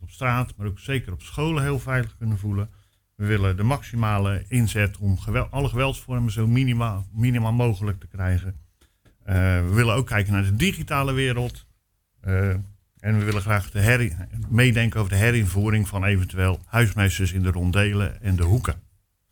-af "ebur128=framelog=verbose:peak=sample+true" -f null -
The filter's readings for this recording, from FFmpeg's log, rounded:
Integrated loudness:
  I:         -23.0 LUFS
  Threshold: -33.5 LUFS
Loudness range:
  LRA:         3.7 LU
  Threshold: -43.3 LUFS
  LRA low:   -25.0 LUFS
  LRA high:  -21.3 LUFS
Sample peak:
  Peak:       -5.7 dBFS
True peak:
  Peak:       -5.7 dBFS